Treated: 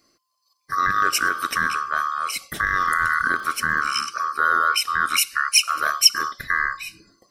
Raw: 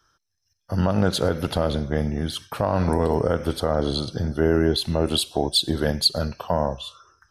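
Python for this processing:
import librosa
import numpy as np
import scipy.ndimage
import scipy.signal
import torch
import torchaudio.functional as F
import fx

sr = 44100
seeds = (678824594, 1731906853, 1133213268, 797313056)

y = fx.band_swap(x, sr, width_hz=1000)
y = fx.high_shelf(y, sr, hz=4500.0, db=11.0)
y = fx.dmg_crackle(y, sr, seeds[0], per_s=75.0, level_db=-31.0, at=(2.65, 4.03), fade=0.02)
y = y * librosa.db_to_amplitude(-1.0)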